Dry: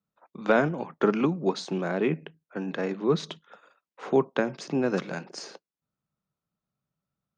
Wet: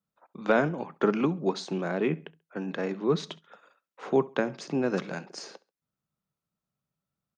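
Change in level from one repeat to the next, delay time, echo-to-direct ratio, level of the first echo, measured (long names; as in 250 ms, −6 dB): −10.0 dB, 68 ms, −22.0 dB, −22.5 dB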